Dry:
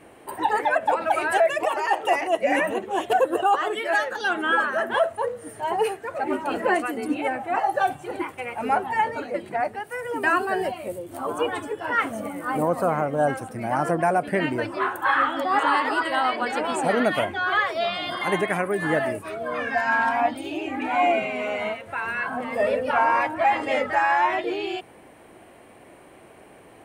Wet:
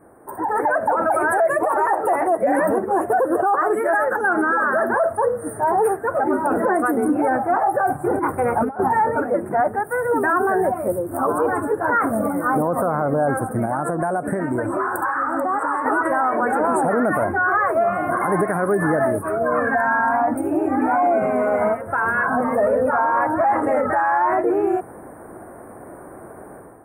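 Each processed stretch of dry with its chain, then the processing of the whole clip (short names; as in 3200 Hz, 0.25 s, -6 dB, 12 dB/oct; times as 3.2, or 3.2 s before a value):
8.04–8.89 low shelf 440 Hz +4.5 dB + negative-ratio compressor -28 dBFS, ratio -0.5
13.65–15.86 bell 8000 Hz +13.5 dB 0.26 oct + compressor 10:1, threshold -28 dBFS
whole clip: Chebyshev band-stop 1500–9600 Hz, order 3; limiter -22 dBFS; AGC gain up to 11 dB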